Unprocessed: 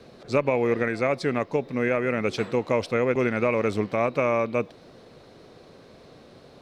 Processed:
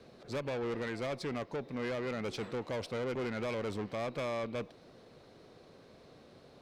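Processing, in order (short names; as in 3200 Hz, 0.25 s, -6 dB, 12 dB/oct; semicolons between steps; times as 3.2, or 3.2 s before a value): tube stage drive 26 dB, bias 0.35; gain -6.5 dB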